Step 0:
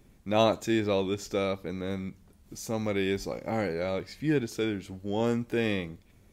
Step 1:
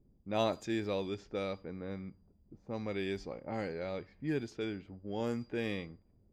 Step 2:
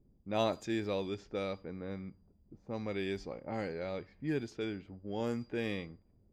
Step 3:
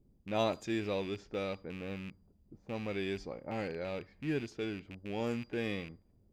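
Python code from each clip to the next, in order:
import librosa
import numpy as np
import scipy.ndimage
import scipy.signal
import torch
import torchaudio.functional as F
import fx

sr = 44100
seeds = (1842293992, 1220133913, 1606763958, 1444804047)

y1 = x + 10.0 ** (-55.0 / 20.0) * np.sin(2.0 * np.pi * 4800.0 * np.arange(len(x)) / sr)
y1 = fx.env_lowpass(y1, sr, base_hz=420.0, full_db=-23.0)
y1 = y1 * 10.0 ** (-8.0 / 20.0)
y2 = y1
y3 = fx.rattle_buzz(y2, sr, strikes_db=-43.0, level_db=-37.0)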